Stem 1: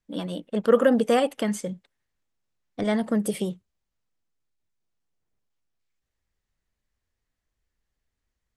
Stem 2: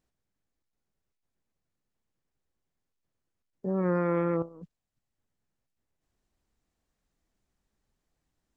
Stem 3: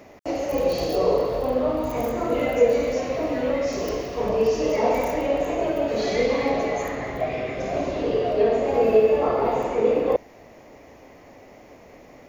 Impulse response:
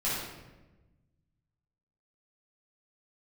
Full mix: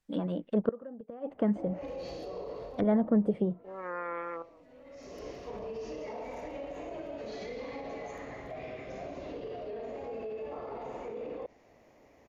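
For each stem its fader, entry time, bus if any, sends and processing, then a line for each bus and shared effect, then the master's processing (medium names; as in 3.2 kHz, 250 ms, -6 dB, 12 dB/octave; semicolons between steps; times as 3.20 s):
-1.0 dB, 0.00 s, no send, none
-1.5 dB, 0.00 s, no send, high-pass 810 Hz 12 dB/octave
-13.5 dB, 1.30 s, no send, peak limiter -19 dBFS, peak gain reduction 11.5 dB; auto duck -19 dB, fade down 1.10 s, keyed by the second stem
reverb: none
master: low-pass that closes with the level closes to 910 Hz, closed at -27 dBFS; inverted gate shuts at -15 dBFS, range -24 dB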